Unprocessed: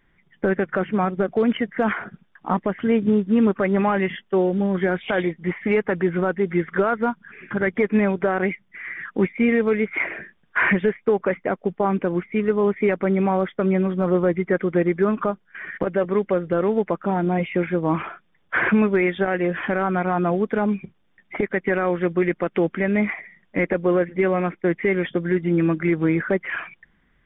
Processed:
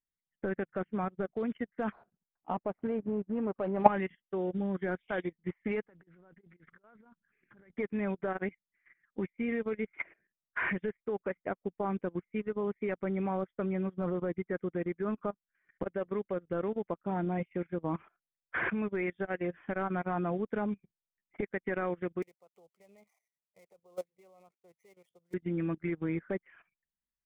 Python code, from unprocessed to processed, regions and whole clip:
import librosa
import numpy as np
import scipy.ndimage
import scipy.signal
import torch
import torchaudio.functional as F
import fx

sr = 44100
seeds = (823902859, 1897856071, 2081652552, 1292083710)

y = fx.chain(x, sr, fx.median_filter(points=25),
    fx.lowpass(hz=2700.0, slope=24),
    fx.peak_eq(hz=710.0, db=11.0, octaves=1.4), at=(1.92, 3.88))
y = fx.chain(y, sr, fx.over_compress(threshold_db=-30.0, ratio=-1.0),
    fx.doppler_dist(depth_ms=0.15), at=(5.87, 7.75))
y = fx.chain(y, sr, fx.dead_time(dead_ms=0.059),
    fx.highpass(hz=410.0, slope=6),
    fx.fixed_phaser(hz=680.0, stages=4), at=(22.22, 25.34))
y = fx.low_shelf(y, sr, hz=97.0, db=6.0)
y = fx.level_steps(y, sr, step_db=11)
y = fx.upward_expand(y, sr, threshold_db=-38.0, expansion=2.5)